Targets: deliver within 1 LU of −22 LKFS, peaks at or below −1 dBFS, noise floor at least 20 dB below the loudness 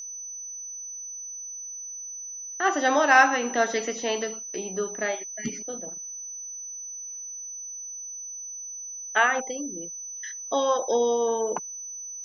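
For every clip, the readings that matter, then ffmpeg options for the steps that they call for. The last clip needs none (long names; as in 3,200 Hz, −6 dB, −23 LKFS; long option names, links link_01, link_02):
interfering tone 6,000 Hz; level of the tone −35 dBFS; integrated loudness −27.5 LKFS; sample peak −4.5 dBFS; target loudness −22.0 LKFS
→ -af "bandreject=frequency=6000:width=30"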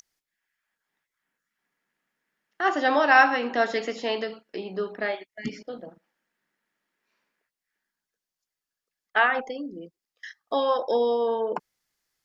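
interfering tone none found; integrated loudness −24.5 LKFS; sample peak −5.0 dBFS; target loudness −22.0 LKFS
→ -af "volume=2.5dB"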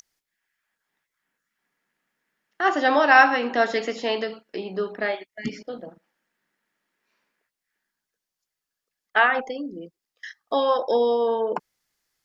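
integrated loudness −22.0 LKFS; sample peak −2.5 dBFS; background noise floor −86 dBFS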